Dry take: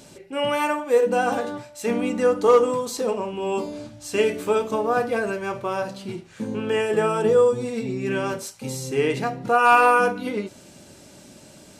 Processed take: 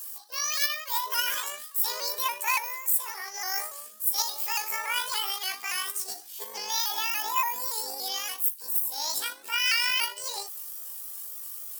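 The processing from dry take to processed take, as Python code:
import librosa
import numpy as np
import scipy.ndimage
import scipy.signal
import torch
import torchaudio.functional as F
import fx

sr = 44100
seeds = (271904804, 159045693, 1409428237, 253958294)

p1 = fx.pitch_heads(x, sr, semitones=12.0)
p2 = np.diff(p1, prepend=0.0)
p3 = fx.level_steps(p2, sr, step_db=16)
p4 = p2 + (p3 * 10.0 ** (-1.0 / 20.0))
p5 = fx.high_shelf(p4, sr, hz=6800.0, db=7.0)
p6 = fx.rider(p5, sr, range_db=4, speed_s=0.5)
y = fx.vibrato_shape(p6, sr, shape='saw_up', rate_hz=3.5, depth_cents=100.0)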